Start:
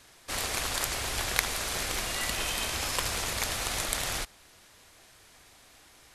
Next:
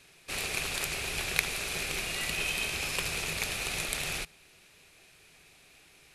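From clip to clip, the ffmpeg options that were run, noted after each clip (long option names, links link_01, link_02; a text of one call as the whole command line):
ffmpeg -i in.wav -af "equalizer=frequency=160:width_type=o:width=0.33:gain=11,equalizer=frequency=400:width_type=o:width=0.33:gain=7,equalizer=frequency=1000:width_type=o:width=0.33:gain=-4,equalizer=frequency=2500:width_type=o:width=0.33:gain=12,equalizer=frequency=4000:width_type=o:width=0.33:gain=3,equalizer=frequency=10000:width_type=o:width=0.33:gain=3,volume=-5dB" out.wav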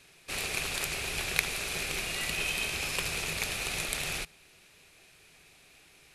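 ffmpeg -i in.wav -af anull out.wav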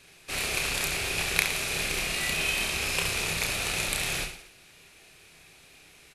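ffmpeg -i in.wav -af "aecho=1:1:30|67.5|114.4|173|246.2:0.631|0.398|0.251|0.158|0.1,volume=2dB" out.wav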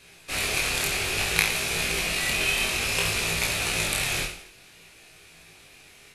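ffmpeg -i in.wav -af "flanger=delay=17:depth=5.3:speed=0.58,volume=6dB" out.wav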